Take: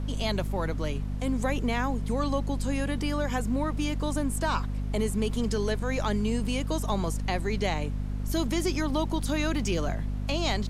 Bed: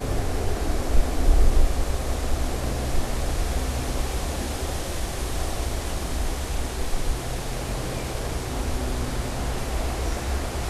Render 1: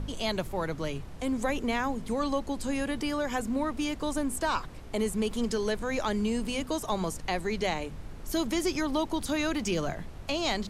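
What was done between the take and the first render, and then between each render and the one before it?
de-hum 50 Hz, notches 5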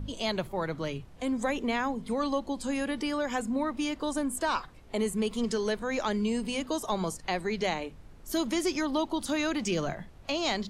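noise print and reduce 9 dB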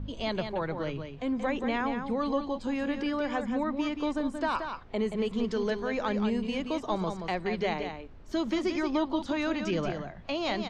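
distance through air 170 m; delay 178 ms -7 dB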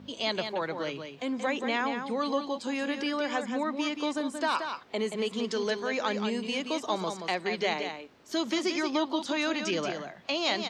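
high-pass 240 Hz 12 dB/octave; treble shelf 2.9 kHz +11.5 dB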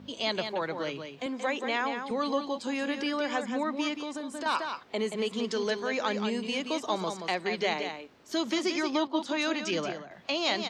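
1.26–2.11 s: high-pass 280 Hz; 3.94–4.46 s: compression 5:1, threshold -33 dBFS; 9.07–10.11 s: three bands expanded up and down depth 100%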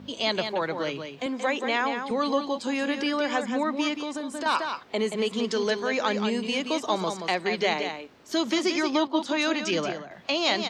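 trim +4 dB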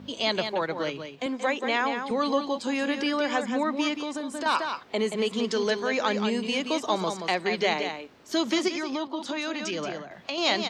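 0.47–1.66 s: transient shaper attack 0 dB, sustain -5 dB; 8.68–10.38 s: compression, threshold -27 dBFS

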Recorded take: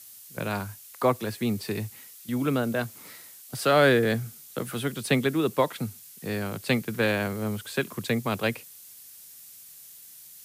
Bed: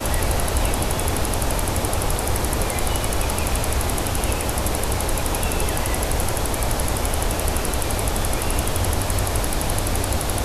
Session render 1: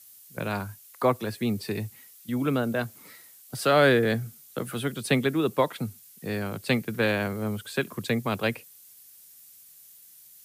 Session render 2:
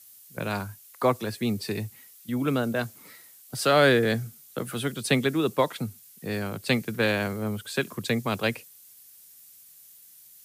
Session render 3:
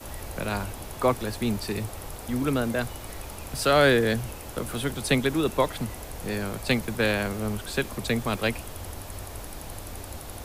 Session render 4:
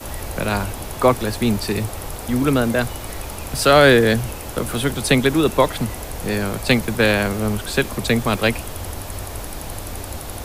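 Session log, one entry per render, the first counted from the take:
noise reduction 6 dB, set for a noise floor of -48 dBFS
dynamic bell 6.1 kHz, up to +5 dB, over -45 dBFS, Q 0.76
add bed -16.5 dB
trim +8 dB; peak limiter -2 dBFS, peak gain reduction 1.5 dB

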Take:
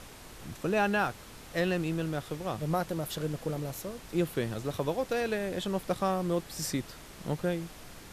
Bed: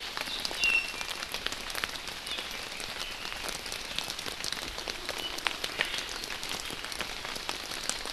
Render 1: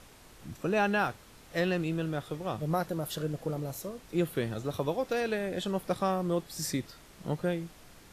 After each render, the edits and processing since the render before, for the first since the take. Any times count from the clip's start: noise print and reduce 6 dB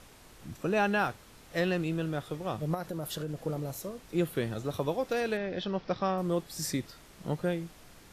2.74–3.38 s: compression, threshold -31 dBFS; 5.37–6.18 s: elliptic low-pass 5.5 kHz, stop band 50 dB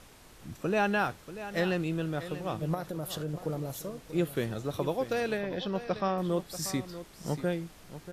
delay 637 ms -13 dB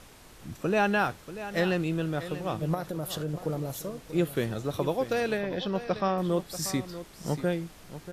trim +2.5 dB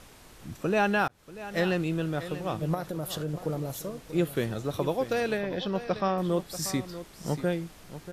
1.08–1.71 s: fade in equal-power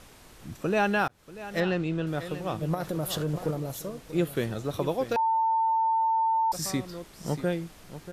1.60–2.07 s: distance through air 90 m; 2.80–3.51 s: waveshaping leveller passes 1; 5.16–6.52 s: bleep 897 Hz -21.5 dBFS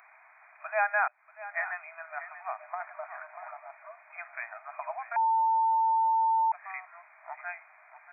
FFT band-pass 610–2500 Hz; tilt EQ +3 dB/octave

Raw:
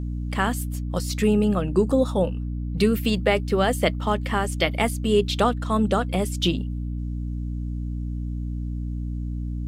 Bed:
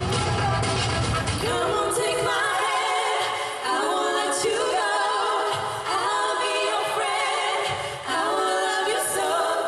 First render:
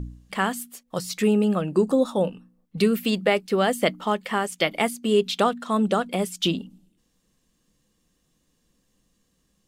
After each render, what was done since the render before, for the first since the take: de-hum 60 Hz, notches 5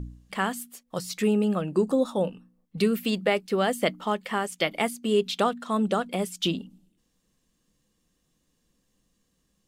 trim -3 dB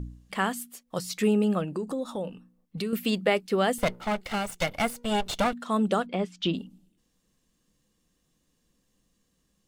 1.64–2.93 s: compression 2.5:1, threshold -31 dBFS; 3.78–5.53 s: comb filter that takes the minimum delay 1.4 ms; 6.06–6.54 s: distance through air 170 m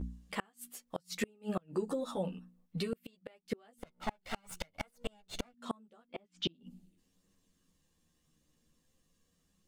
chorus voices 2, 0.41 Hz, delay 12 ms, depth 1.3 ms; inverted gate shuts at -22 dBFS, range -35 dB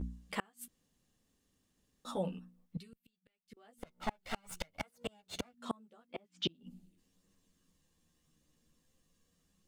0.68–2.05 s: room tone; 2.77–3.57 s: amplifier tone stack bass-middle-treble 6-0-2; 4.80–6.50 s: high-pass 71 Hz

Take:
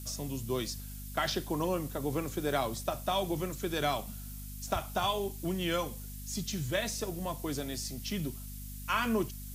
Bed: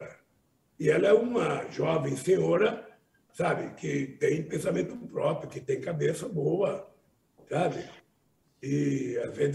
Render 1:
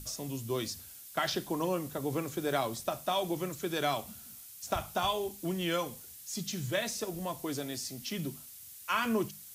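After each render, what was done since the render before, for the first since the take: hum notches 50/100/150/200/250 Hz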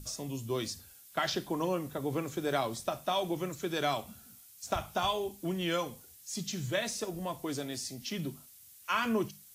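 noise print and reduce 6 dB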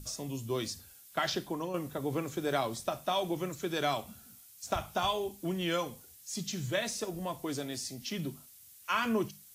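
1.25–1.74 s: fade out equal-power, to -8 dB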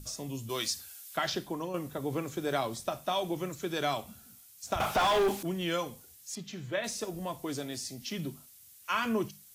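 0.49–1.17 s: tilt shelf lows -7.5 dB, about 660 Hz; 4.80–5.43 s: overdrive pedal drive 34 dB, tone 1.8 kHz, clips at -18 dBFS; 6.35–6.84 s: tone controls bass -6 dB, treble -14 dB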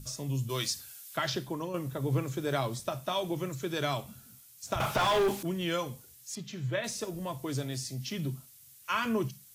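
peaking EQ 130 Hz +13.5 dB 0.24 oct; band-stop 750 Hz, Q 12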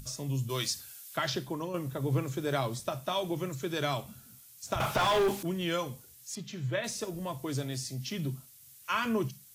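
upward compressor, threshold -50 dBFS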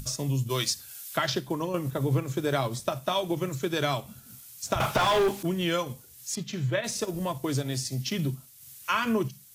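transient shaper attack +1 dB, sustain -5 dB; in parallel at +2 dB: compression, threshold -34 dBFS, peak gain reduction 10.5 dB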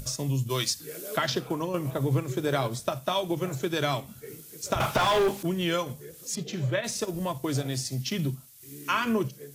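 add bed -18 dB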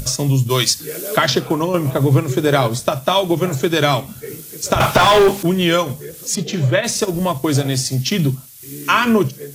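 trim +12 dB; peak limiter -1 dBFS, peak gain reduction 1.5 dB

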